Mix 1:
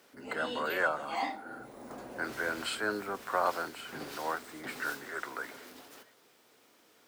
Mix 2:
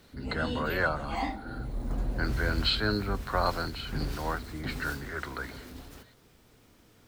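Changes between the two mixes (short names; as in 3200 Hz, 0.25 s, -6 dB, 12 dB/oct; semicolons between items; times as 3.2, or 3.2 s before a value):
speech: add synth low-pass 4100 Hz, resonance Q 6.2; master: remove HPF 400 Hz 12 dB/oct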